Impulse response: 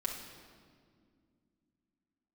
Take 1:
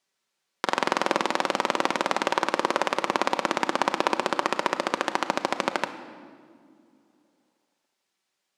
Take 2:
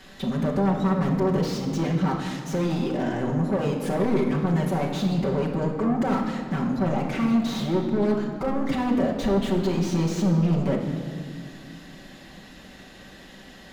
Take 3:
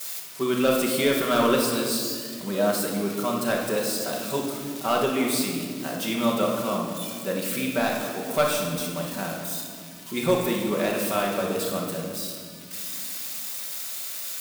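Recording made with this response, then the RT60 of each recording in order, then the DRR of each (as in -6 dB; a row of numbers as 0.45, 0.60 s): 2; not exponential, 2.1 s, 2.1 s; 7.0, -2.0, -9.5 dB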